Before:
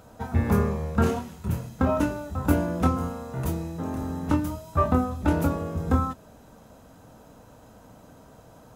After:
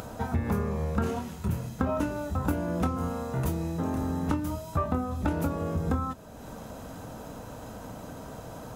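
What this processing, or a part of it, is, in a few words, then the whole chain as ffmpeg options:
upward and downward compression: -af "acompressor=mode=upward:threshold=-36dB:ratio=2.5,acompressor=threshold=-28dB:ratio=5,volume=3dB"

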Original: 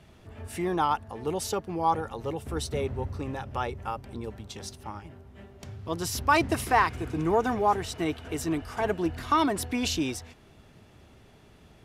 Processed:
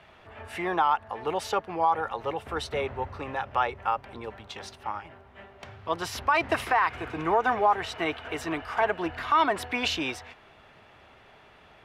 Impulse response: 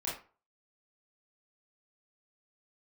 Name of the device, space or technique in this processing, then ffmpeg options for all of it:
DJ mixer with the lows and highs turned down: -filter_complex "[0:a]acrossover=split=570 3400:gain=0.158 1 0.126[link_01][link_02][link_03];[link_01][link_02][link_03]amix=inputs=3:normalize=0,alimiter=limit=-21.5dB:level=0:latency=1:release=113,volume=8.5dB"

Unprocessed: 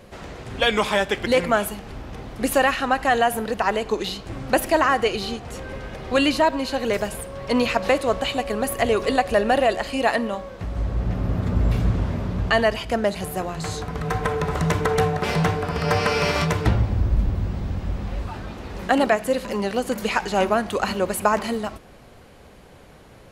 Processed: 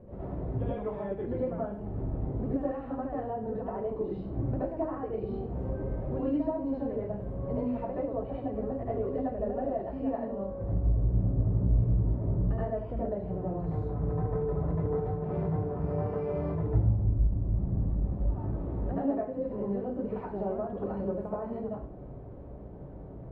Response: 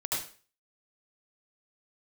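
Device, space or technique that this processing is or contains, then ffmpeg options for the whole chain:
television next door: -filter_complex "[0:a]acompressor=threshold=-34dB:ratio=3,lowpass=450[link_01];[1:a]atrim=start_sample=2205[link_02];[link_01][link_02]afir=irnorm=-1:irlink=0"

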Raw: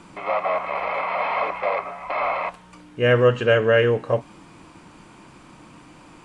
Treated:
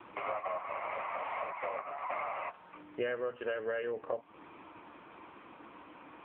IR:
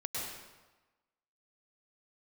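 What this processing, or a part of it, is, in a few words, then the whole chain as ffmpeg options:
voicemail: -af "highpass=360,lowpass=2800,bandreject=frequency=50:width_type=h:width=6,bandreject=frequency=100:width_type=h:width=6,bandreject=frequency=150:width_type=h:width=6,acompressor=threshold=-32dB:ratio=8" -ar 8000 -c:a libopencore_amrnb -b:a 6700

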